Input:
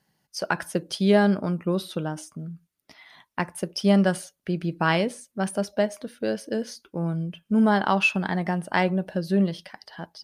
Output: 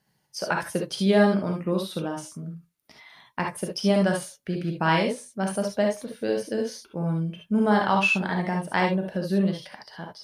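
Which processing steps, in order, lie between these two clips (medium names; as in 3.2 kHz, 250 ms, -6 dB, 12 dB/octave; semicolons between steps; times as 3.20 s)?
gated-style reverb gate 90 ms rising, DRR 1 dB; trim -2 dB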